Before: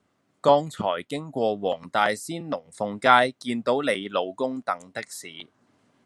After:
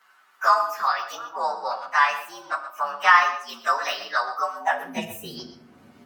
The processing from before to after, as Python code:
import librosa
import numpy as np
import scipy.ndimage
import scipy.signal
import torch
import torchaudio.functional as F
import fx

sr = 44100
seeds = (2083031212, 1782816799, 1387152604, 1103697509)

y = fx.partial_stretch(x, sr, pct=116)
y = y + 10.0 ** (-14.0 / 20.0) * np.pad(y, (int(121 * sr / 1000.0), 0))[:len(y)]
y = fx.room_shoebox(y, sr, seeds[0], volume_m3=910.0, walls='furnished', distance_m=1.1)
y = fx.filter_sweep_highpass(y, sr, from_hz=1200.0, to_hz=70.0, start_s=4.56, end_s=5.24, q=4.0)
y = fx.high_shelf(y, sr, hz=7400.0, db=-10.0, at=(1.15, 3.49))
y = fx.band_squash(y, sr, depth_pct=40)
y = y * librosa.db_to_amplitude(2.5)